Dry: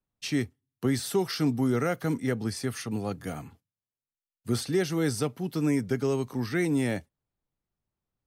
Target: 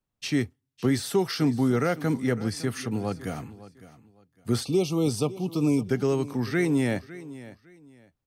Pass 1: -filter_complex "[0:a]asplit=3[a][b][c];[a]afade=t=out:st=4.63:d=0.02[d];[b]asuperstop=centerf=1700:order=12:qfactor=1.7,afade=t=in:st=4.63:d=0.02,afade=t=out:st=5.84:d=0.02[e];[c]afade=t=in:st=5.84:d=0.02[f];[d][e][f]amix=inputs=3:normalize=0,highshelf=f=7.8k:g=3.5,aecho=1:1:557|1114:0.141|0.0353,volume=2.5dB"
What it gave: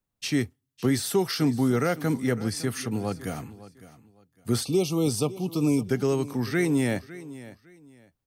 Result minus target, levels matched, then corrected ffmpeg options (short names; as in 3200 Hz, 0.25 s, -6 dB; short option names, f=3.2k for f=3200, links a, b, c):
8000 Hz band +3.5 dB
-filter_complex "[0:a]asplit=3[a][b][c];[a]afade=t=out:st=4.63:d=0.02[d];[b]asuperstop=centerf=1700:order=12:qfactor=1.7,afade=t=in:st=4.63:d=0.02,afade=t=out:st=5.84:d=0.02[e];[c]afade=t=in:st=5.84:d=0.02[f];[d][e][f]amix=inputs=3:normalize=0,highshelf=f=7.8k:g=-4.5,aecho=1:1:557|1114:0.141|0.0353,volume=2.5dB"